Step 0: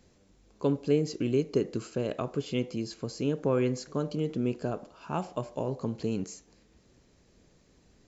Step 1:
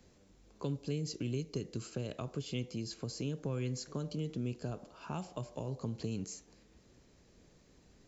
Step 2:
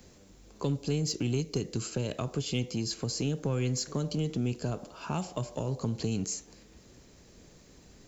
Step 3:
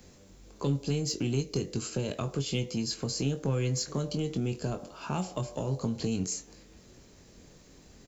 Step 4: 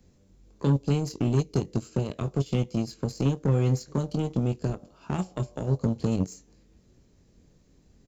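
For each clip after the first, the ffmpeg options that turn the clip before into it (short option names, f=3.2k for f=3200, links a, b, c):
-filter_complex "[0:a]acrossover=split=160|3000[a][b][c];[b]acompressor=threshold=-39dB:ratio=5[d];[a][d][c]amix=inputs=3:normalize=0,volume=-1dB"
-filter_complex "[0:a]highshelf=f=6.5k:g=7.5,asplit=2[a][b];[b]asoftclip=type=hard:threshold=-35dB,volume=-8dB[c];[a][c]amix=inputs=2:normalize=0,volume=4.5dB"
-filter_complex "[0:a]asplit=2[a][b];[b]adelay=22,volume=-8dB[c];[a][c]amix=inputs=2:normalize=0"
-af "lowshelf=f=380:g=11,aeval=exprs='0.335*(cos(1*acos(clip(val(0)/0.335,-1,1)))-cos(1*PI/2))+0.0335*(cos(7*acos(clip(val(0)/0.335,-1,1)))-cos(7*PI/2))':c=same,volume=-2.5dB"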